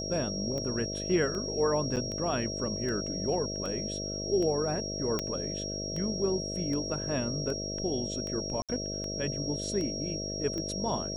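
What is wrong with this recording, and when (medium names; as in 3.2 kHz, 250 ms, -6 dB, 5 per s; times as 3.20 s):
buzz 50 Hz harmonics 13 -38 dBFS
tick 78 rpm -25 dBFS
whine 5.6 kHz -36 dBFS
1.96–1.97 s: dropout 7.7 ms
5.19 s: pop -15 dBFS
8.62–8.69 s: dropout 67 ms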